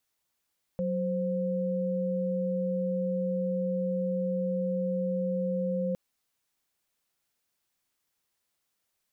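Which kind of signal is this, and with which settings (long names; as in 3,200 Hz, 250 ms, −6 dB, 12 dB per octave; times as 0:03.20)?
held notes F#3/C5 sine, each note −29.5 dBFS 5.16 s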